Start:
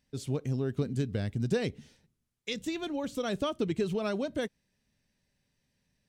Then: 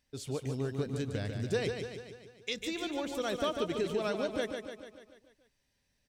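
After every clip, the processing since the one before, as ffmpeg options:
-filter_complex "[0:a]equalizer=f=170:w=0.94:g=-9,asplit=2[a][b];[b]aecho=0:1:146|292|438|584|730|876|1022:0.501|0.286|0.163|0.0928|0.0529|0.0302|0.0172[c];[a][c]amix=inputs=2:normalize=0"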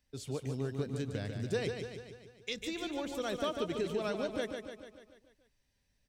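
-filter_complex "[0:a]lowshelf=f=94:g=8,acrossover=split=100|4300[a][b][c];[a]acompressor=threshold=-54dB:ratio=6[d];[d][b][c]amix=inputs=3:normalize=0,volume=-2.5dB"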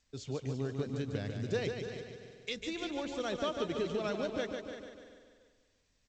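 -af "aecho=1:1:340|680|1020:0.251|0.0553|0.0122" -ar 16000 -c:a g722

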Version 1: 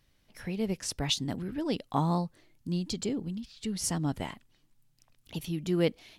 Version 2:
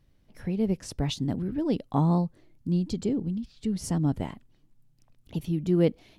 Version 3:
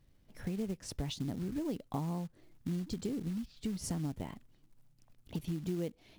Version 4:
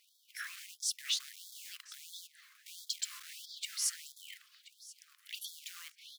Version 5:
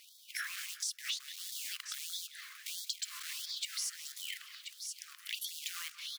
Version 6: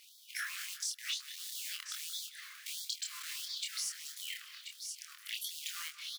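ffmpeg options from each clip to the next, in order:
-af "tiltshelf=f=830:g=6.5"
-af "acrusher=bits=5:mode=log:mix=0:aa=0.000001,acompressor=threshold=-31dB:ratio=6,volume=-2.5dB"
-filter_complex "[0:a]alimiter=level_in=10.5dB:limit=-24dB:level=0:latency=1:release=23,volume=-10.5dB,asplit=2[a][b];[b]adelay=1030,lowpass=f=4.4k:p=1,volume=-14.5dB,asplit=2[c][d];[d]adelay=1030,lowpass=f=4.4k:p=1,volume=0.18[e];[a][c][e]amix=inputs=3:normalize=0,afftfilt=real='re*gte(b*sr/1024,1000*pow(3300/1000,0.5+0.5*sin(2*PI*1.5*pts/sr)))':imag='im*gte(b*sr/1024,1000*pow(3300/1000,0.5+0.5*sin(2*PI*1.5*pts/sr)))':win_size=1024:overlap=0.75,volume=13.5dB"
-filter_complex "[0:a]acrossover=split=7400[a][b];[b]asoftclip=type=hard:threshold=-37dB[c];[a][c]amix=inputs=2:normalize=0,asplit=2[d][e];[e]adelay=180,lowpass=f=2.4k:p=1,volume=-14dB,asplit=2[f][g];[g]adelay=180,lowpass=f=2.4k:p=1,volume=0.38,asplit=2[h][i];[i]adelay=180,lowpass=f=2.4k:p=1,volume=0.38,asplit=2[j][k];[k]adelay=180,lowpass=f=2.4k:p=1,volume=0.38[l];[d][f][h][j][l]amix=inputs=5:normalize=0,acompressor=threshold=-48dB:ratio=5,volume=11dB"
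-filter_complex "[0:a]asplit=2[a][b];[b]adelay=26,volume=-4dB[c];[a][c]amix=inputs=2:normalize=0,volume=-1.5dB"

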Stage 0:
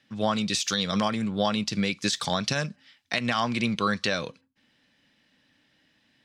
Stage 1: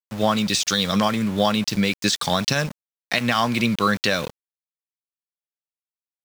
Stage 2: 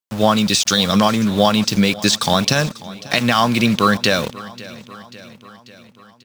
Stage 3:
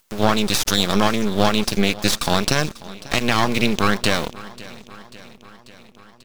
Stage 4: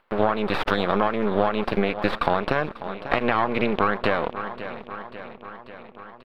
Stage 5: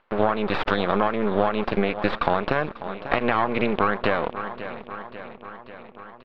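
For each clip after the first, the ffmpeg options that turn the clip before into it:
-af "aeval=exprs='val(0)*gte(abs(val(0)),0.0158)':c=same,volume=5.5dB"
-af "equalizer=f=2k:w=2.8:g=-3.5,aecho=1:1:541|1082|1623|2164|2705:0.112|0.0673|0.0404|0.0242|0.0145,volume=5.5dB"
-af "acompressor=mode=upward:threshold=-37dB:ratio=2.5,aeval=exprs='max(val(0),0)':c=same"
-af "firequalizer=gain_entry='entry(120,0);entry(490,10);entry(1200,10);entry(4400,-11);entry(6200,-30);entry(8800,-25)':delay=0.05:min_phase=1,acompressor=threshold=-15dB:ratio=6,volume=-2dB"
-af "lowpass=4.6k"

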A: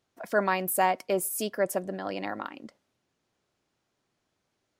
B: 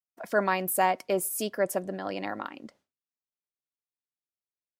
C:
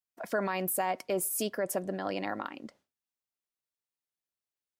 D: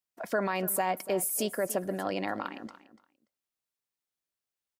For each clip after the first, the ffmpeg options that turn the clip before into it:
-af "agate=range=-33dB:threshold=-56dB:ratio=3:detection=peak"
-af "alimiter=limit=-21dB:level=0:latency=1:release=63"
-af "aecho=1:1:290|580:0.158|0.0254,volume=1.5dB"

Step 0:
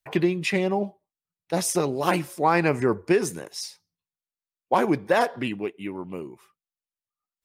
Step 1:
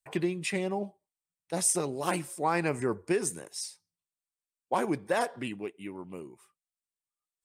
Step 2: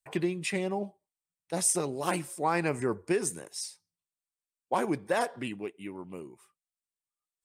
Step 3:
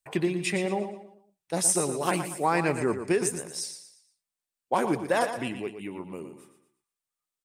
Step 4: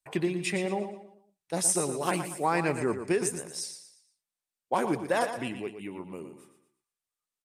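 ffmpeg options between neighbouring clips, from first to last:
-af "equalizer=f=8.5k:w=2.2:g=12.5,volume=-7.5dB"
-af anull
-af "aecho=1:1:117|234|351|468:0.335|0.124|0.0459|0.017,volume=3dB"
-af "aresample=32000,aresample=44100,volume=-2dB"

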